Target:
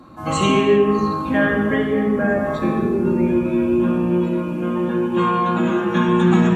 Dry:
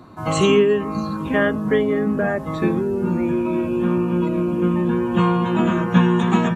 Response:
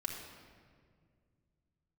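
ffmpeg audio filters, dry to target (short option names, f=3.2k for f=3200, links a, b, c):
-filter_complex "[0:a]asettb=1/sr,asplit=3[a][b][c];[a]atrim=end=4.054[d];[b]atrim=start=4.05:end=6.09,asetpts=PTS-STARTPTS,afade=t=in:d=0.004:c=qsin,afade=t=out:st=2.036:d=0.004:c=qsin,lowshelf=f=210:g=-9[e];[c]atrim=start=6.086[f];[d][e]acrossfade=d=0.004:c1=hsin:c2=qsin[g];[g][f]acrossfade=d=0.004:c1=qsin:c2=hsin[h];[1:a]atrim=start_sample=2205,afade=t=out:st=0.42:d=0.01,atrim=end_sample=18963,asetrate=41013,aresample=44100[i];[h][i]afir=irnorm=-1:irlink=0"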